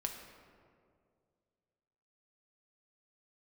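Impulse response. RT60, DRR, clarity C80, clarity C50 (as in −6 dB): 2.2 s, 2.5 dB, 7.0 dB, 5.5 dB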